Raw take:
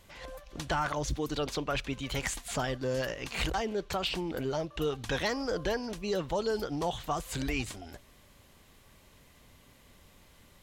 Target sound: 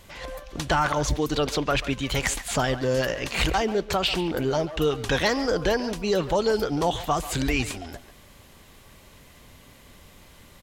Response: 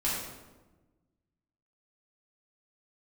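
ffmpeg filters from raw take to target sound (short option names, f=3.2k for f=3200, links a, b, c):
-filter_complex "[0:a]asplit=2[a][b];[b]adelay=140,highpass=300,lowpass=3.4k,asoftclip=type=hard:threshold=-31dB,volume=-11dB[c];[a][c]amix=inputs=2:normalize=0,volume=8dB"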